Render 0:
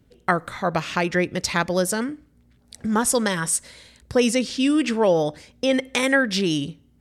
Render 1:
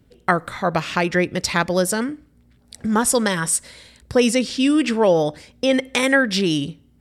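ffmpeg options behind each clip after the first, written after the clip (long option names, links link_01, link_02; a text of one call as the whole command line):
ffmpeg -i in.wav -af "bandreject=frequency=6400:width=16,volume=2.5dB" out.wav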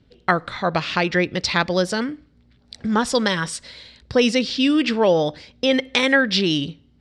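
ffmpeg -i in.wav -af "lowpass=frequency=4300:width_type=q:width=1.9,volume=-1dB" out.wav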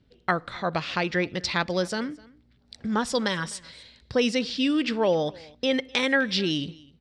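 ffmpeg -i in.wav -af "aecho=1:1:254:0.0668,volume=-6dB" out.wav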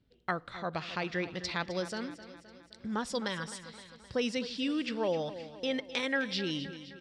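ffmpeg -i in.wav -af "aecho=1:1:260|520|780|1040|1300|1560:0.2|0.114|0.0648|0.037|0.0211|0.012,volume=-8.5dB" out.wav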